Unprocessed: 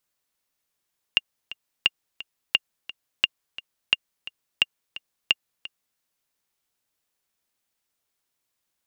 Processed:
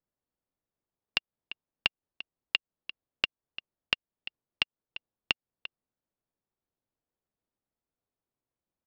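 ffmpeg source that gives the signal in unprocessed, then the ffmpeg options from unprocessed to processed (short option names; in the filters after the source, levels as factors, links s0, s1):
-f lavfi -i "aevalsrc='pow(10,(-4-17.5*gte(mod(t,2*60/174),60/174))/20)*sin(2*PI*2810*mod(t,60/174))*exp(-6.91*mod(t,60/174)/0.03)':d=4.82:s=44100"
-af "adynamicsmooth=sensitivity=3.5:basefreq=780,aresample=11025,acrusher=bits=2:mode=log:mix=0:aa=0.000001,aresample=44100,acompressor=threshold=0.0631:ratio=6"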